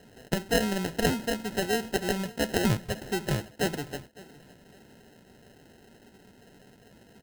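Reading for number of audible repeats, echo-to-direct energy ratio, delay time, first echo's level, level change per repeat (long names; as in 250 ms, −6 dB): 2, −20.5 dB, 557 ms, −21.0 dB, −9.0 dB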